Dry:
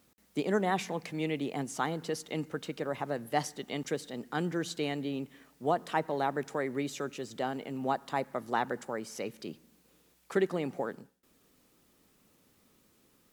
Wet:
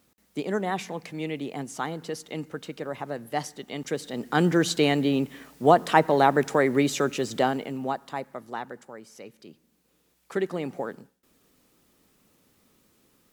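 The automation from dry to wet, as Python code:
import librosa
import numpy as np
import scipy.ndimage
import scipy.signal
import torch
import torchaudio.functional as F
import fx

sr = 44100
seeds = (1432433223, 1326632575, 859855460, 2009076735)

y = fx.gain(x, sr, db=fx.line((3.73, 1.0), (4.46, 11.5), (7.38, 11.5), (7.94, 1.0), (8.9, -6.5), (9.49, -6.5), (10.62, 2.5)))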